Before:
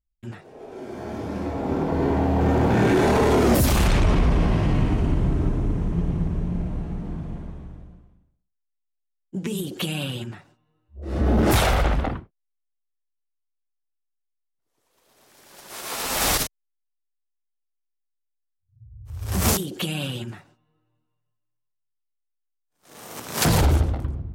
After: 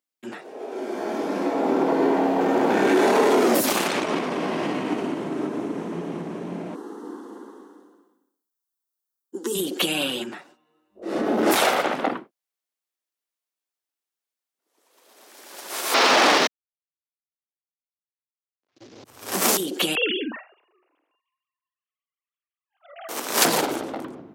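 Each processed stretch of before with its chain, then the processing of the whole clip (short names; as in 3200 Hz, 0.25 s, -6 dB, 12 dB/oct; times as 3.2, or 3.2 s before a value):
6.75–9.55 brick-wall FIR high-pass 160 Hz + high shelf 11000 Hz +9 dB + fixed phaser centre 640 Hz, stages 6
15.94–19.04 CVSD 32 kbps + sample leveller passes 3
19.95–23.09 sine-wave speech + low shelf 400 Hz -4.5 dB + doubler 46 ms -13 dB
whole clip: compressor, threshold -20 dBFS; HPF 260 Hz 24 dB/oct; gain +6.5 dB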